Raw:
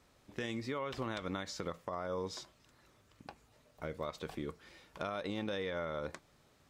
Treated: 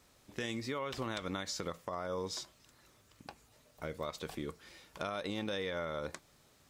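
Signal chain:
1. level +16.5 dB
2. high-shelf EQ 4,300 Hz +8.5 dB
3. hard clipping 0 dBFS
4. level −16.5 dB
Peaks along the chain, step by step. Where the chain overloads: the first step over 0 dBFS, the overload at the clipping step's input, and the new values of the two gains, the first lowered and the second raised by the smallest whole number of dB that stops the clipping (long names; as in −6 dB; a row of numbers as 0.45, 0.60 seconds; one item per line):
−8.0, −6.0, −6.0, −22.5 dBFS
no step passes full scale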